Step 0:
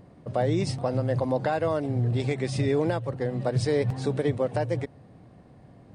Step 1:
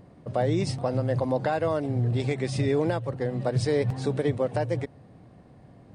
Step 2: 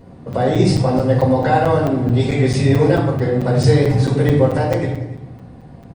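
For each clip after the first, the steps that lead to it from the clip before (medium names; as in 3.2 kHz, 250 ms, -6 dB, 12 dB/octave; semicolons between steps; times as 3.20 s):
no audible change
delay 295 ms -18.5 dB; reverberation RT60 0.75 s, pre-delay 6 ms, DRR -5.5 dB; crackling interface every 0.22 s, samples 256, zero, from 0.33 s; trim +2 dB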